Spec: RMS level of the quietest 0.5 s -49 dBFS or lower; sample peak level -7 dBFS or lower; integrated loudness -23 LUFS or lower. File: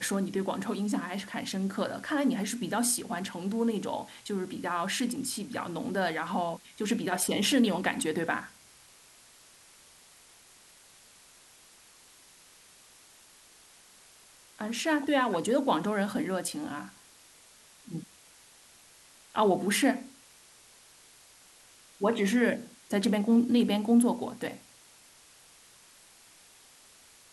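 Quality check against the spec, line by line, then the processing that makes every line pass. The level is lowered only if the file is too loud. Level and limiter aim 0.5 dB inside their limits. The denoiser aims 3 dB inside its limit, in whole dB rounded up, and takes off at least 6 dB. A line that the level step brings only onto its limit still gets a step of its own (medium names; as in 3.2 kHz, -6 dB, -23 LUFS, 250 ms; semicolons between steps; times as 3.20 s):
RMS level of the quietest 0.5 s -57 dBFS: pass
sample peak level -13.0 dBFS: pass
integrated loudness -29.5 LUFS: pass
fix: none needed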